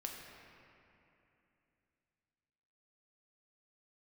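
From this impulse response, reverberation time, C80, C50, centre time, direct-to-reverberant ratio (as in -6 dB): 2.9 s, 3.0 dB, 2.0 dB, 104 ms, -0.5 dB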